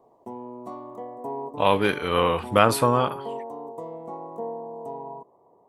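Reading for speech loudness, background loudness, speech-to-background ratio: -22.0 LUFS, -36.5 LUFS, 14.5 dB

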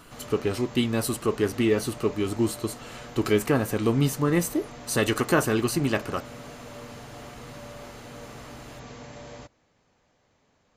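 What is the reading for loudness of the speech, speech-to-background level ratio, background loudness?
-26.0 LUFS, 17.0 dB, -43.0 LUFS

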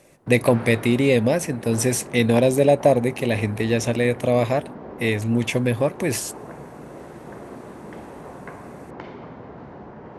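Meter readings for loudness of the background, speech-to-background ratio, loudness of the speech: -38.5 LUFS, 18.0 dB, -20.5 LUFS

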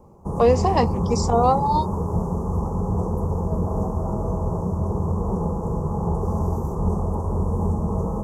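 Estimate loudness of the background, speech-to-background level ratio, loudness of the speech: -25.0 LUFS, 3.5 dB, -21.5 LUFS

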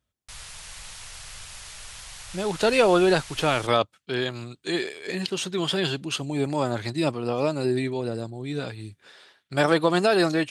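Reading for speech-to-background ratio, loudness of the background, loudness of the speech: 15.5 dB, -40.0 LUFS, -24.5 LUFS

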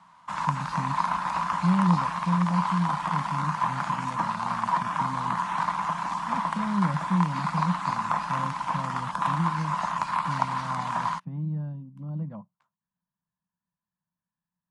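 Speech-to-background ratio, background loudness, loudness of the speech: -3.0 dB, -28.5 LUFS, -31.5 LUFS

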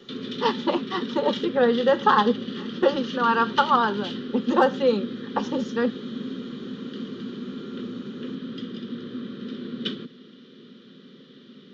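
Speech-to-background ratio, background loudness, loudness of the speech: 9.5 dB, -33.0 LUFS, -23.5 LUFS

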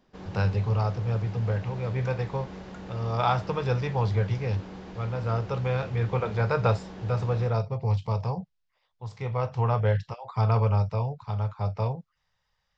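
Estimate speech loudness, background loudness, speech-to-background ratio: -28.0 LUFS, -42.0 LUFS, 14.0 dB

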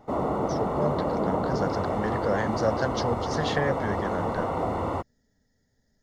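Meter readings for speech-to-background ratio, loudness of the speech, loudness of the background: -2.5 dB, -31.0 LUFS, -28.5 LUFS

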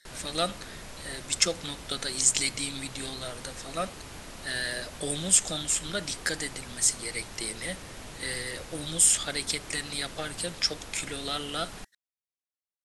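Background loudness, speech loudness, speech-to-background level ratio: -43.5 LUFS, -28.5 LUFS, 15.0 dB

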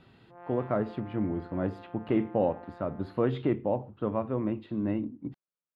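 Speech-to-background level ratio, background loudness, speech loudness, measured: 18.5 dB, -50.0 LUFS, -31.5 LUFS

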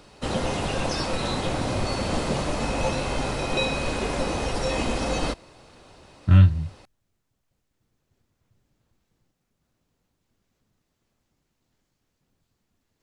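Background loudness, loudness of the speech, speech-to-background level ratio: -27.0 LUFS, -18.0 LUFS, 9.0 dB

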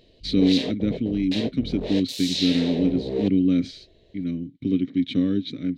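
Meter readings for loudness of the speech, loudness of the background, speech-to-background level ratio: -24.0 LUFS, -30.0 LUFS, 6.0 dB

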